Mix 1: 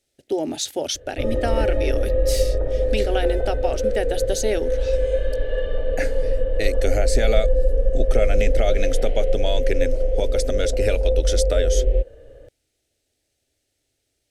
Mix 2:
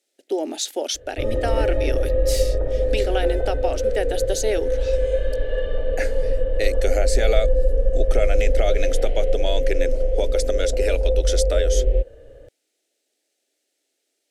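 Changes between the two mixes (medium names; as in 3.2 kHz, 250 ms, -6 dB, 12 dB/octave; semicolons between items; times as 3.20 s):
speech: add high-pass 280 Hz 24 dB/octave; master: remove band-stop 7.2 kHz, Q 26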